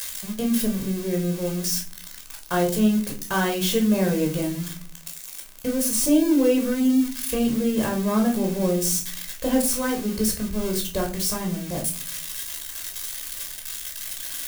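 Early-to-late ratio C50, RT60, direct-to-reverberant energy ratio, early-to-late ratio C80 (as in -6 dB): 10.5 dB, 0.40 s, 0.5 dB, 16.0 dB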